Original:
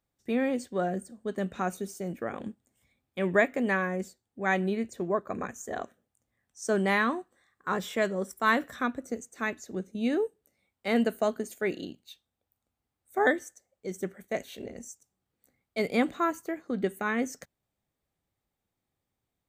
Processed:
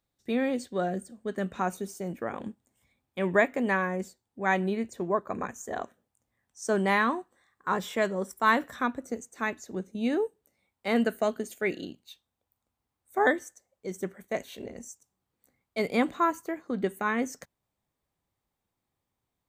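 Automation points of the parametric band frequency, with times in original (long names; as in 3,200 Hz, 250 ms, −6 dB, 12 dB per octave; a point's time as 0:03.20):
parametric band +6 dB 0.39 octaves
0:01.01 3,900 Hz
0:01.59 940 Hz
0:10.89 940 Hz
0:11.46 3,700 Hz
0:11.99 1,000 Hz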